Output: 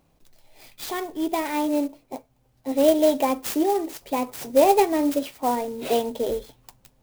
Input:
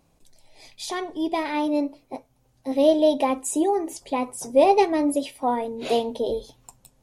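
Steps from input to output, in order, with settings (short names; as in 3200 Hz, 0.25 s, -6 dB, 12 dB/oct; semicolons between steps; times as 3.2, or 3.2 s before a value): clock jitter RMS 0.035 ms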